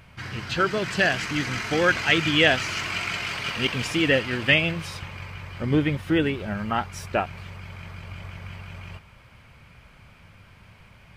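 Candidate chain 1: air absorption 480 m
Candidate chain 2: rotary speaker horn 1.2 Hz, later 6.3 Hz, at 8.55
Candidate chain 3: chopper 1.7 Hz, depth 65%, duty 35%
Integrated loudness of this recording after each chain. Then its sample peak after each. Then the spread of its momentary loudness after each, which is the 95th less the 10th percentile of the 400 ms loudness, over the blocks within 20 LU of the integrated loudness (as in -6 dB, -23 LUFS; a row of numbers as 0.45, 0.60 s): -27.0, -26.0, -26.5 LUFS; -8.5, -6.5, -5.0 dBFS; 17, 19, 21 LU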